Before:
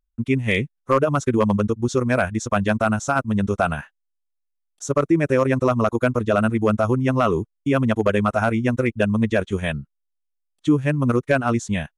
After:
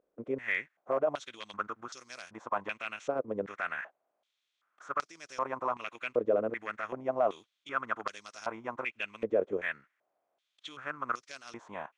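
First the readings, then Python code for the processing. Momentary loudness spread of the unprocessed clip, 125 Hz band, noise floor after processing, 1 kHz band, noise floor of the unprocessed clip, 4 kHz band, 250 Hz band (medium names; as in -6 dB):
5 LU, -32.0 dB, -83 dBFS, -11.0 dB, -76 dBFS, -11.5 dB, -23.5 dB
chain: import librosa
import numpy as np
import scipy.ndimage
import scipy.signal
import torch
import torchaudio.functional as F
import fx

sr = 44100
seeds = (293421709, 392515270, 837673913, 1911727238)

y = fx.bin_compress(x, sr, power=0.6)
y = fx.filter_held_bandpass(y, sr, hz=2.6, low_hz=490.0, high_hz=5000.0)
y = F.gain(torch.from_numpy(y), -5.5).numpy()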